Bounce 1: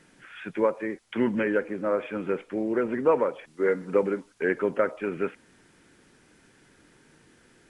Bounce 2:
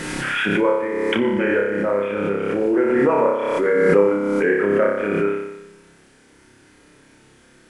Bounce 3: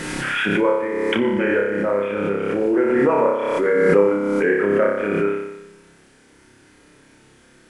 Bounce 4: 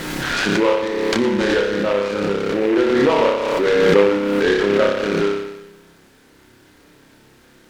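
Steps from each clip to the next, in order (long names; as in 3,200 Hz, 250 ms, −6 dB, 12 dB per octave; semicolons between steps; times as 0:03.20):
flutter between parallel walls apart 5.1 metres, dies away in 0.96 s; background raised ahead of every attack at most 21 dB per second; level +2 dB
no processing that can be heard
short delay modulated by noise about 1,600 Hz, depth 0.061 ms; level +1.5 dB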